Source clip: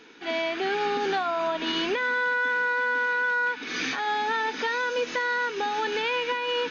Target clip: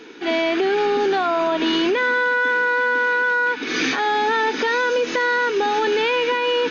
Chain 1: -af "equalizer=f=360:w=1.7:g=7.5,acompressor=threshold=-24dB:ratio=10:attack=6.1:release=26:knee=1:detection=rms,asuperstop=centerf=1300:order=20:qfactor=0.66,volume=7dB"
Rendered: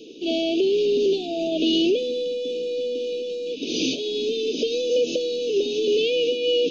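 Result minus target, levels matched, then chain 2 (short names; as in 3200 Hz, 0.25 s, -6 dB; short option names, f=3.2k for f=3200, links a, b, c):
1000 Hz band -18.5 dB
-af "equalizer=f=360:w=1.7:g=7.5,acompressor=threshold=-24dB:ratio=10:attack=6.1:release=26:knee=1:detection=rms,volume=7dB"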